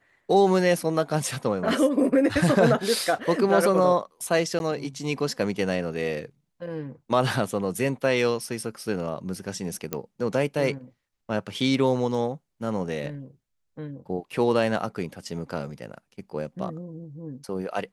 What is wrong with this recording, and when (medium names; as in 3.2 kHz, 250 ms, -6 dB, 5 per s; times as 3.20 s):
4.59–4.60 s: dropout 11 ms
9.93 s: pop -12 dBFS